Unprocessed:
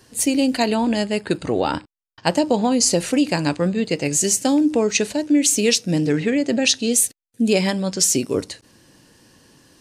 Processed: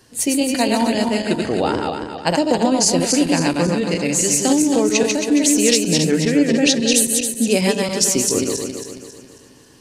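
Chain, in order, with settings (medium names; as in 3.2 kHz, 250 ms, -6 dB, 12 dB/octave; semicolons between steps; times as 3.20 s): backward echo that repeats 136 ms, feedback 64%, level -3 dB; hum notches 50/100/150/200 Hz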